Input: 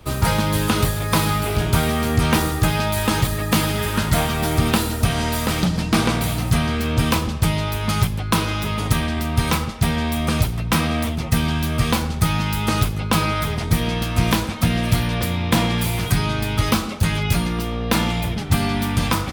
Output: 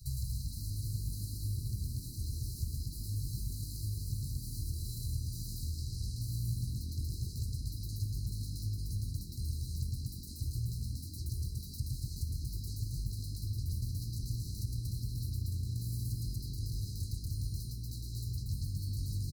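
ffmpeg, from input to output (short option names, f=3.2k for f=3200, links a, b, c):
-filter_complex "[0:a]asoftclip=type=tanh:threshold=-14dB,acrossover=split=100|1000[a][b][c];[a]acompressor=threshold=-31dB:ratio=4[d];[b]acompressor=threshold=-32dB:ratio=4[e];[c]acompressor=threshold=-40dB:ratio=4[f];[d][e][f]amix=inputs=3:normalize=0,aecho=1:1:110.8|236.2:0.891|0.891,acrossover=split=270|3200[g][h][i];[i]asoftclip=type=hard:threshold=-36.5dB[j];[g][h][j]amix=inputs=3:normalize=0,acompressor=threshold=-28dB:ratio=6,afftfilt=real='re*(1-between(b*sr/4096,150,3900))':imag='im*(1-between(b*sr/4096,150,3900))':win_size=4096:overlap=0.75,asplit=8[k][l][m][n][o][p][q][r];[l]adelay=126,afreqshift=47,volume=-16dB[s];[m]adelay=252,afreqshift=94,volume=-19.9dB[t];[n]adelay=378,afreqshift=141,volume=-23.8dB[u];[o]adelay=504,afreqshift=188,volume=-27.6dB[v];[p]adelay=630,afreqshift=235,volume=-31.5dB[w];[q]adelay=756,afreqshift=282,volume=-35.4dB[x];[r]adelay=882,afreqshift=329,volume=-39.3dB[y];[k][s][t][u][v][w][x][y]amix=inputs=8:normalize=0,volume=-2.5dB"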